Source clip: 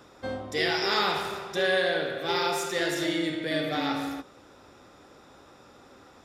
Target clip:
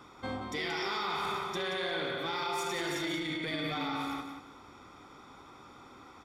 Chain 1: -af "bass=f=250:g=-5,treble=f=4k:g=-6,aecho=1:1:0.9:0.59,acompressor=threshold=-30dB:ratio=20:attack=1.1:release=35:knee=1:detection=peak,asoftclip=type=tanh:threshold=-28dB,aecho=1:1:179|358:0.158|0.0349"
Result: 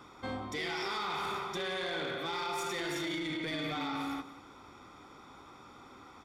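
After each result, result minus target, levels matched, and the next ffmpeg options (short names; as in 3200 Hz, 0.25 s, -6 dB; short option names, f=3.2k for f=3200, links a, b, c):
soft clip: distortion +16 dB; echo-to-direct -8 dB
-af "bass=f=250:g=-5,treble=f=4k:g=-6,aecho=1:1:0.9:0.59,acompressor=threshold=-30dB:ratio=20:attack=1.1:release=35:knee=1:detection=peak,asoftclip=type=tanh:threshold=-19dB,aecho=1:1:179|358:0.158|0.0349"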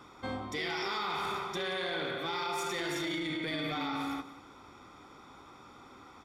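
echo-to-direct -8 dB
-af "bass=f=250:g=-5,treble=f=4k:g=-6,aecho=1:1:0.9:0.59,acompressor=threshold=-30dB:ratio=20:attack=1.1:release=35:knee=1:detection=peak,asoftclip=type=tanh:threshold=-19dB,aecho=1:1:179|358|537:0.398|0.0876|0.0193"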